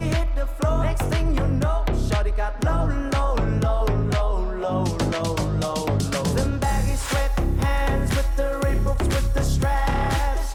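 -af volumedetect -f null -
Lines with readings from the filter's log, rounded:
mean_volume: -21.0 dB
max_volume: -12.8 dB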